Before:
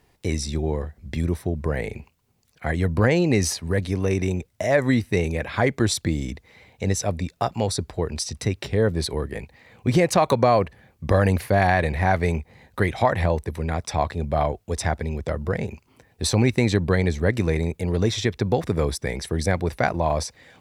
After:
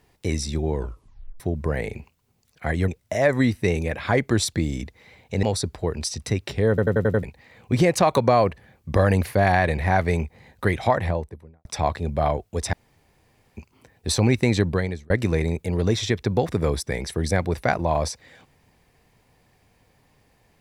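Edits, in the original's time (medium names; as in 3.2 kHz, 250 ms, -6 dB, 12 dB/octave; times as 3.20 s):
0.74 s: tape stop 0.66 s
2.88–4.37 s: delete
6.92–7.58 s: delete
8.84 s: stutter in place 0.09 s, 6 plays
12.97–13.80 s: studio fade out
14.88–15.72 s: room tone
16.80–17.25 s: fade out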